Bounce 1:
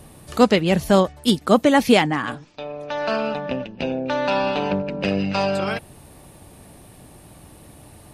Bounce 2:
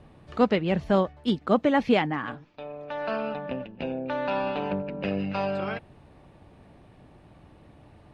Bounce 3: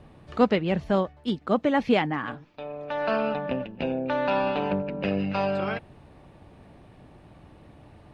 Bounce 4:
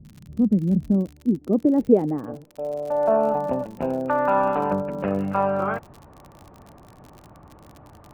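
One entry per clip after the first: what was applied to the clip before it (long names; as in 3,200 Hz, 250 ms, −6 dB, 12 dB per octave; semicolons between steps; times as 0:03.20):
low-pass filter 2,800 Hz 12 dB per octave; level −6.5 dB
speech leveller within 5 dB 2 s
low-pass filter sweep 190 Hz → 1,200 Hz, 0:00.36–0:04.03; surface crackle 50 per second −35 dBFS; level +1.5 dB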